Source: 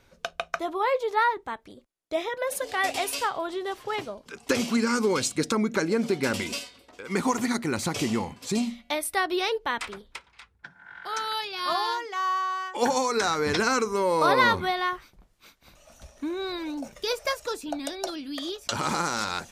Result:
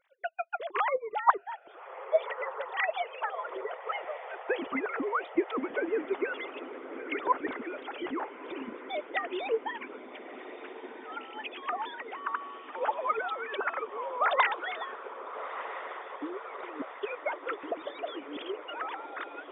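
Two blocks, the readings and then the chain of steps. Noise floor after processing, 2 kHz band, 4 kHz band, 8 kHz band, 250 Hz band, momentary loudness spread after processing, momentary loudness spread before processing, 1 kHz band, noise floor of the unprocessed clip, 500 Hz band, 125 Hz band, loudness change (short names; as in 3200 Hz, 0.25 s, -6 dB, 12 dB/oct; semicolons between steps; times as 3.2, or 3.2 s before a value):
-48 dBFS, -5.0 dB, -13.0 dB, under -40 dB, -10.5 dB, 12 LU, 11 LU, -4.5 dB, -62 dBFS, -5.5 dB, under -25 dB, -6.5 dB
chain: sine-wave speech; diffused feedback echo 1.285 s, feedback 62%, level -9.5 dB; harmonic-percussive split harmonic -17 dB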